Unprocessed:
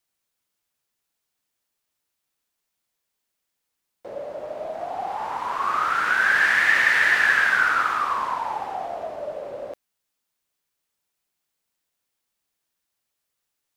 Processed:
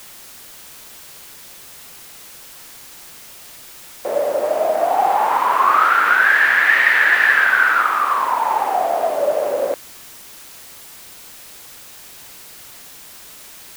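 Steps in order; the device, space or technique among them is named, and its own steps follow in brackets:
dictaphone (band-pass filter 290–3,400 Hz; automatic gain control gain up to 15.5 dB; tape wow and flutter; white noise bed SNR 20 dB)
level −1 dB

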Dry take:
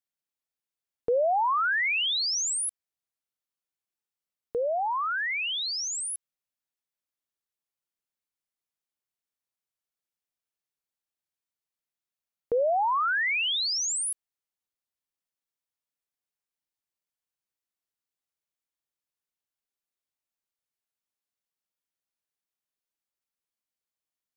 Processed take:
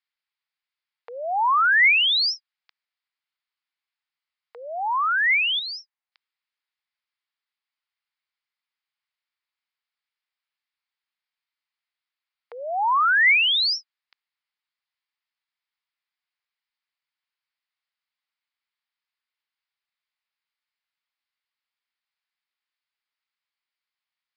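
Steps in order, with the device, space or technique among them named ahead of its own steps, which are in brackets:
0:05.59–0:06.12: tilt shelving filter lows +8 dB
musical greeting card (downsampling to 11,025 Hz; high-pass filter 890 Hz 24 dB per octave; parametric band 2,100 Hz +5 dB 0.41 octaves)
level +6.5 dB

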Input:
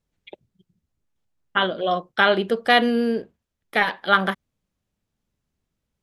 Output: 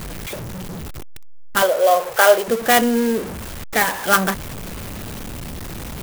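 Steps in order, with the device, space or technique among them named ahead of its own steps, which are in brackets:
early CD player with a faulty converter (converter with a step at zero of −25 dBFS; converter with an unsteady clock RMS 0.053 ms)
0:01.62–0:02.48: low shelf with overshoot 360 Hz −13 dB, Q 3
level +1 dB

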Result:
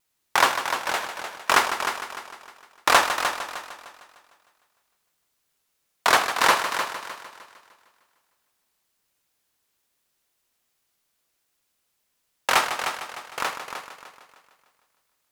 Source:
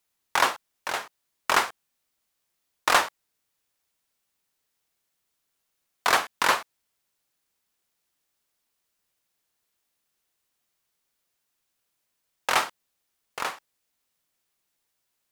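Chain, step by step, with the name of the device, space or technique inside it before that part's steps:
multi-head tape echo (echo machine with several playback heads 152 ms, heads first and second, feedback 43%, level −10 dB; tape wow and flutter)
level +3 dB

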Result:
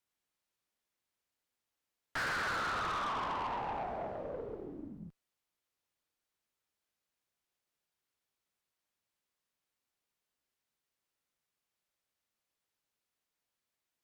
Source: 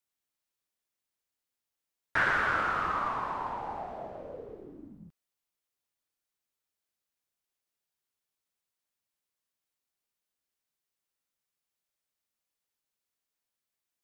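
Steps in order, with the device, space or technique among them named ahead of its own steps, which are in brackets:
tube preamp driven hard (tube saturation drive 37 dB, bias 0.35; high-shelf EQ 5,700 Hz −7 dB)
level +4 dB

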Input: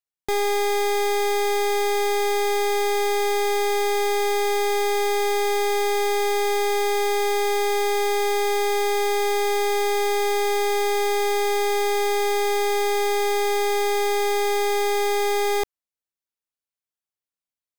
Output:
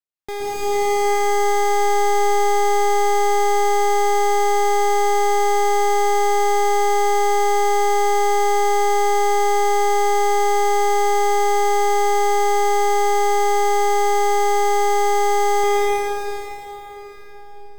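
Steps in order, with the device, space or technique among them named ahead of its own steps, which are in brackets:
swimming-pool hall (convolution reverb RT60 4.7 s, pre-delay 113 ms, DRR −8.5 dB; high-shelf EQ 5,900 Hz −5 dB)
level −5 dB

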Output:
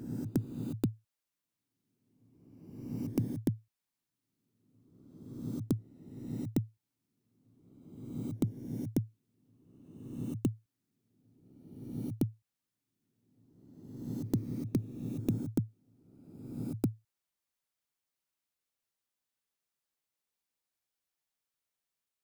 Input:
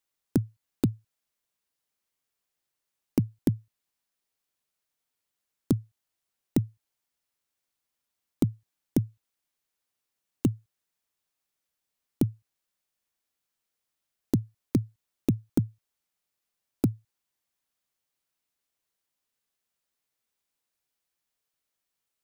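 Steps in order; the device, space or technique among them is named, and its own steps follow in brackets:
reverse reverb (reversed playback; convolution reverb RT60 1.5 s, pre-delay 111 ms, DRR 5 dB; reversed playback)
level −6.5 dB

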